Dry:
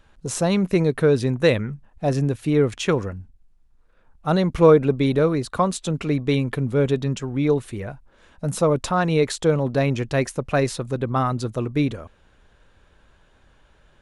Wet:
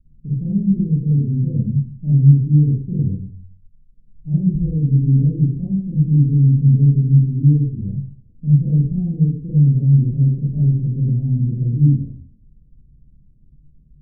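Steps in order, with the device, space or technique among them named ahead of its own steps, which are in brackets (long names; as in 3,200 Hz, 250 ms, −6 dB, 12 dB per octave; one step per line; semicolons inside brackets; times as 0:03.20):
inverse Chebyshev low-pass filter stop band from 2,800 Hz, stop band 60 dB
club heard from the street (brickwall limiter −15 dBFS, peak gain reduction 10.5 dB; low-pass filter 210 Hz 24 dB per octave; convolution reverb RT60 0.55 s, pre-delay 35 ms, DRR −8 dB)
level +1 dB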